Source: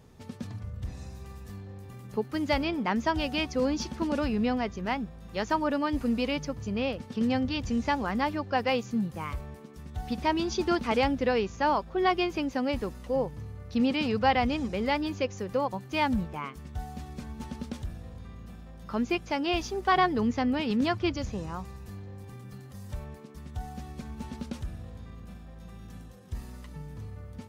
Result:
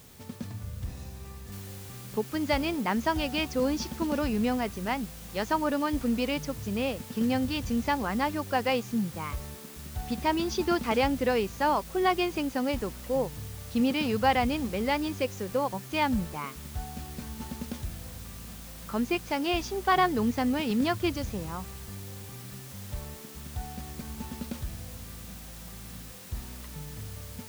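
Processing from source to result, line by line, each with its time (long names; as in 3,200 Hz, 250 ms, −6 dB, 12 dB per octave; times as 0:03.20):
0:01.52: noise floor change −55 dB −48 dB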